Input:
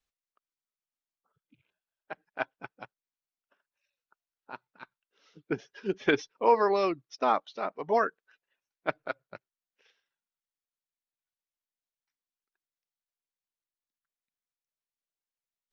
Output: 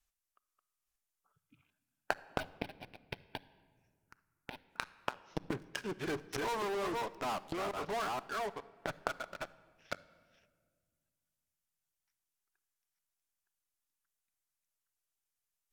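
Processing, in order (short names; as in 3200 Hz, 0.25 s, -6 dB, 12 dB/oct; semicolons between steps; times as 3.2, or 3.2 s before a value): reverse delay 0.482 s, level -6 dB; treble ducked by the level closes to 1300 Hz, closed at -25.5 dBFS; graphic EQ 125/250/500/1000/2000/4000 Hz -6/-8/-10/-4/-5/-8 dB; in parallel at -6 dB: fuzz box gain 48 dB, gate -57 dBFS; on the sum: flipped gate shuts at -28 dBFS, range -24 dB; 2.4–4.69 envelope phaser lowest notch 520 Hz, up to 1300 Hz, full sweep at -55.5 dBFS; shoebox room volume 2300 m³, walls mixed, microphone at 0.33 m; gain +7.5 dB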